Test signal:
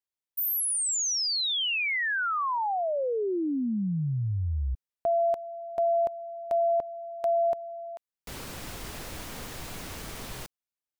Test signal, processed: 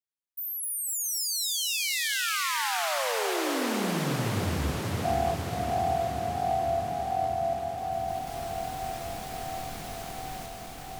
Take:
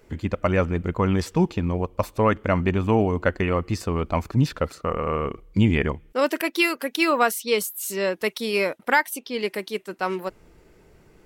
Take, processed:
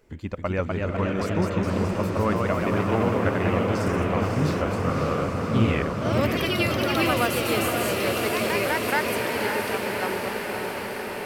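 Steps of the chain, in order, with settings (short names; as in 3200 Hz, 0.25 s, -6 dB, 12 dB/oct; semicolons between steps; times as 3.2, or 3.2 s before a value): echoes that change speed 0.274 s, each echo +1 st, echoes 3; on a send: diffused feedback echo 0.558 s, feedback 76%, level -3.5 dB; on the sum: gain -6 dB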